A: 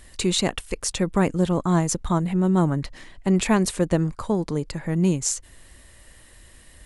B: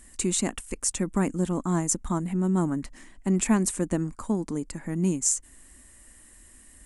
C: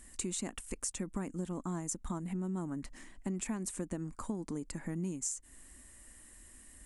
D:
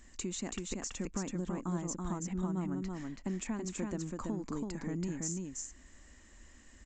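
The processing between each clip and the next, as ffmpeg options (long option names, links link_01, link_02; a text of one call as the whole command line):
ffmpeg -i in.wav -af "equalizer=frequency=125:width_type=o:width=1:gain=-9,equalizer=frequency=250:width_type=o:width=1:gain=9,equalizer=frequency=500:width_type=o:width=1:gain=-6,equalizer=frequency=4000:width_type=o:width=1:gain=-9,equalizer=frequency=8000:width_type=o:width=1:gain=10,volume=-5dB" out.wav
ffmpeg -i in.wav -af "acompressor=threshold=-31dB:ratio=6,volume=-3.5dB" out.wav
ffmpeg -i in.wav -af "aecho=1:1:330:0.708,aresample=16000,aresample=44100" out.wav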